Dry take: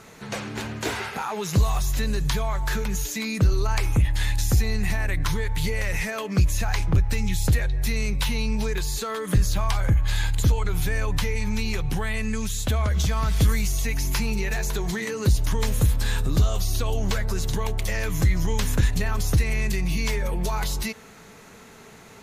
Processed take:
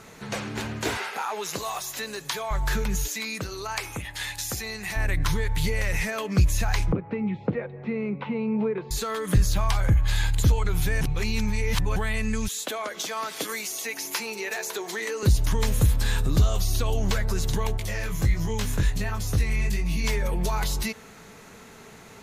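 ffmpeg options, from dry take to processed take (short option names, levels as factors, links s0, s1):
-filter_complex "[0:a]asettb=1/sr,asplit=3[s0][s1][s2];[s0]atrim=end=0.974[s3];[s1]atrim=start=0.97:end=2.51,asetpts=PTS-STARTPTS,afade=t=in:d=0.004:c=qsin,afade=t=out:st=1.536:d=0.004:c=qsin,highpass=410[s4];[s2]atrim=start=2.506[s5];[s3][s4]acrossfade=d=0.004:c1=hsin:c2=qsin[s6];[s6][s5]acrossfade=d=0.004:c1=qsin:c2=hsin,asettb=1/sr,asplit=3[s7][s8][s9];[s7]atrim=end=3.084[s10];[s8]atrim=start=3.08:end=4.96,asetpts=PTS-STARTPTS,afade=t=in:d=0.004:c=qsin,afade=t=out:st=1.876:d=0.004:c=qsin,highpass=f=650:p=1[s11];[s9]atrim=start=4.956[s12];[s10][s11]acrossfade=d=0.004:c1=hsin:c2=qsin[s13];[s13][s12]acrossfade=d=0.004:c1=qsin:c2=hsin,asettb=1/sr,asplit=3[s14][s15][s16];[s14]atrim=end=6.924[s17];[s15]atrim=start=6.92:end=8.91,asetpts=PTS-STARTPTS,afade=t=in:d=0.004:c=qsin,afade=t=out:st=1.986:d=0.004:c=qsin,highpass=f=160:w=0.5412,highpass=f=160:w=1.3066,equalizer=f=210:t=q:w=4:g=5,equalizer=f=330:t=q:w=4:g=3,equalizer=f=480:t=q:w=4:g=7,equalizer=f=1700:t=q:w=4:g=-10,lowpass=f=2000:w=0.5412,lowpass=f=2000:w=1.3066[s18];[s16]atrim=start=8.906[s19];[s17][s18]acrossfade=d=0.004:c1=hsin:c2=qsin[s20];[s20][s19]acrossfade=d=0.004:c1=qsin:c2=hsin,asettb=1/sr,asplit=3[s21][s22][s23];[s21]atrim=end=12.484[s24];[s22]atrim=start=12.48:end=15.23,asetpts=PTS-STARTPTS,afade=t=in:d=0.004:c=qsin,afade=t=out:st=2.746:d=0.004:c=qsin,highpass=f=310:w=0.5412,highpass=f=310:w=1.3066[s25];[s23]atrim=start=15.226[s26];[s24][s25]acrossfade=d=0.004:c1=hsin:c2=qsin[s27];[s27][s26]acrossfade=d=0.004:c1=qsin:c2=hsin,asettb=1/sr,asplit=3[s28][s29][s30];[s28]atrim=end=17.774[s31];[s29]atrim=start=17.77:end=20.04,asetpts=PTS-STARTPTS,afade=t=in:d=0.004:c=qsin,afade=t=out:st=2.266:d=0.004:c=qsin,flanger=delay=18:depth=4.2:speed=1.4[s32];[s30]atrim=start=20.036[s33];[s31][s32]acrossfade=d=0.004:c1=hsin:c2=qsin[s34];[s34][s33]acrossfade=d=0.004:c1=qsin:c2=hsin,asplit=3[s35][s36][s37];[s35]atrim=end=11.012[s38];[s36]atrim=start=11.008:end=11.962,asetpts=PTS-STARTPTS,areverse[s39];[s37]atrim=start=11.958[s40];[s38][s39]acrossfade=d=0.004:c1=hsin:c2=hsin[s41];[s41][s40]acrossfade=d=0.004:c1=hsin:c2=hsin"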